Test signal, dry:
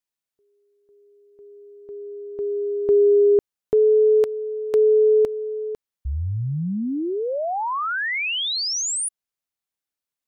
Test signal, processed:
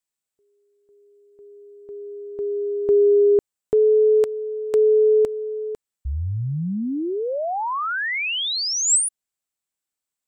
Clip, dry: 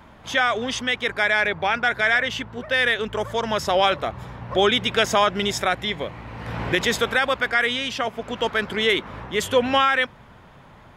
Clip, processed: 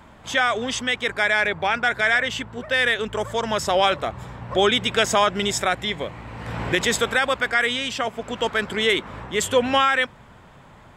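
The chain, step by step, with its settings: bell 7800 Hz +10 dB 0.27 oct

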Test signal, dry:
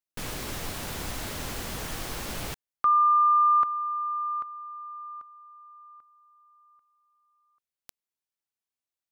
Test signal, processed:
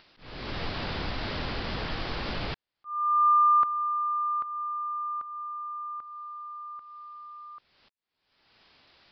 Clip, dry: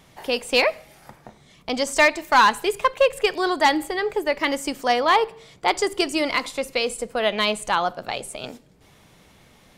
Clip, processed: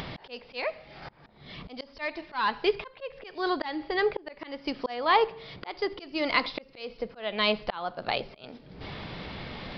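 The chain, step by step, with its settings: upward compressor, threshold -25 dBFS; auto swell 0.444 s; downsampling 11025 Hz

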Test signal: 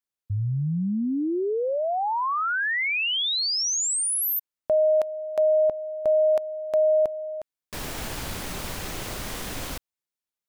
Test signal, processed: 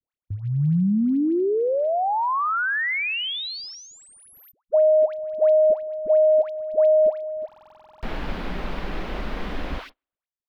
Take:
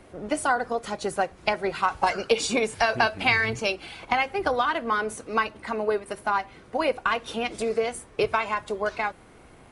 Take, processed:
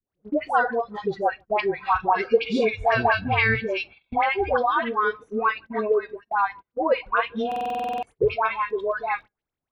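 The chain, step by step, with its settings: analogue delay 0.154 s, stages 4096, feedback 31%, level -21.5 dB; spectral noise reduction 17 dB; crackle 15/s -34 dBFS; low shelf 120 Hz +5.5 dB; dispersion highs, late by 0.122 s, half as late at 890 Hz; gate -39 dBFS, range -29 dB; air absorption 350 m; stuck buffer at 7.47, samples 2048, times 11; gain +4.5 dB

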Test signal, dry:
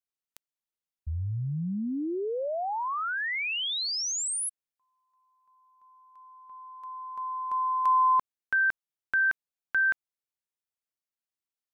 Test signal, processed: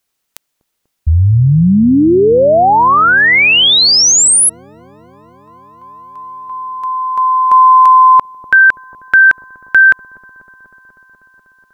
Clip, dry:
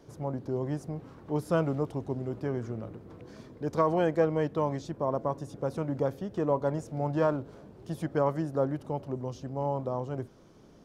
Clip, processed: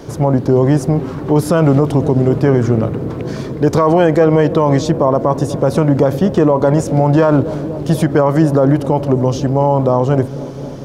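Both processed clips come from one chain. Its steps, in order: dark delay 0.245 s, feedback 80%, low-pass 450 Hz, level -17 dB; maximiser +23.5 dB; gain -1 dB

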